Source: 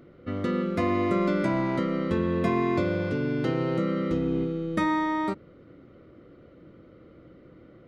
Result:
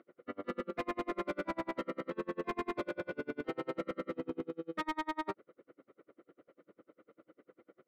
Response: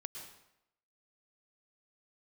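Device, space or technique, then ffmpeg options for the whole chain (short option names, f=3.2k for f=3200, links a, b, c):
helicopter radio: -af "highpass=380,lowpass=2.5k,aeval=exprs='val(0)*pow(10,-37*(0.5-0.5*cos(2*PI*10*n/s))/20)':c=same,asoftclip=type=hard:threshold=-30dB"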